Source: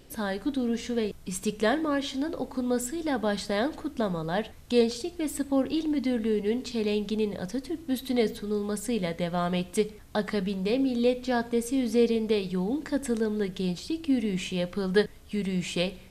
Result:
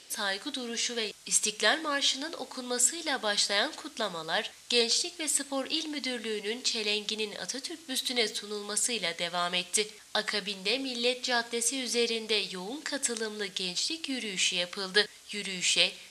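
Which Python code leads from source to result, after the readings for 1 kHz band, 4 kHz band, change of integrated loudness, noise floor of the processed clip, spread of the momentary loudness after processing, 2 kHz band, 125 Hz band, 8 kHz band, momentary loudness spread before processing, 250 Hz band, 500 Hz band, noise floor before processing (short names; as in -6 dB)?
-1.0 dB, +10.0 dB, -0.5 dB, -52 dBFS, 8 LU, +5.0 dB, -14.5 dB, +11.0 dB, 7 LU, -12.0 dB, -6.5 dB, -48 dBFS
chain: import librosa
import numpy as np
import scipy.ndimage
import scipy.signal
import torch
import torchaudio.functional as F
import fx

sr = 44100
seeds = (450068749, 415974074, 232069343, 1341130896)

y = fx.weighting(x, sr, curve='ITU-R 468')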